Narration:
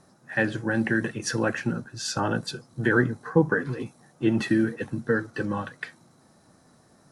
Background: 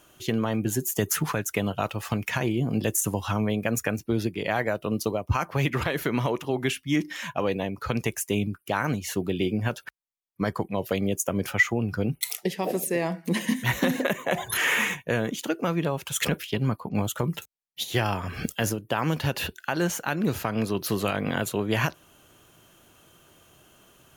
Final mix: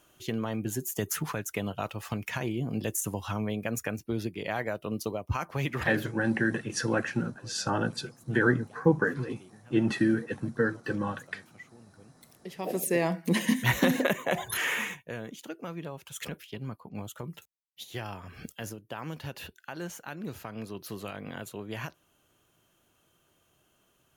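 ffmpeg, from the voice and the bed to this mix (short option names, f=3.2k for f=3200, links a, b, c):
-filter_complex "[0:a]adelay=5500,volume=-2.5dB[a];[1:a]volume=22.5dB,afade=t=out:st=5.9:d=0.24:silence=0.0749894,afade=t=in:st=12.39:d=0.55:silence=0.0375837,afade=t=out:st=13.95:d=1.14:silence=0.237137[b];[a][b]amix=inputs=2:normalize=0"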